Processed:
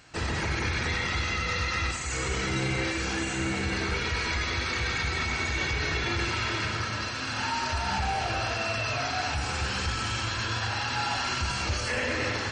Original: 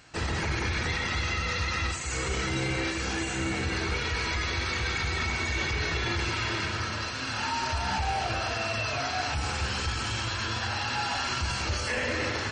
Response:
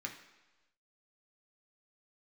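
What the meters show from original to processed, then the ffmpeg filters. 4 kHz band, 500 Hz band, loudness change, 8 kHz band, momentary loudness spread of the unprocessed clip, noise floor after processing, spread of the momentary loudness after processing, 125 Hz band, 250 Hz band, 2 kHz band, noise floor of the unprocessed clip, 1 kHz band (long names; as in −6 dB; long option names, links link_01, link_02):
+0.5 dB, +0.5 dB, +0.5 dB, +0.5 dB, 2 LU, −32 dBFS, 2 LU, +0.5 dB, +0.5 dB, +1.0 dB, −33 dBFS, +0.5 dB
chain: -filter_complex "[0:a]asplit=2[link_01][link_02];[1:a]atrim=start_sample=2205,adelay=94[link_03];[link_02][link_03]afir=irnorm=-1:irlink=0,volume=-7.5dB[link_04];[link_01][link_04]amix=inputs=2:normalize=0"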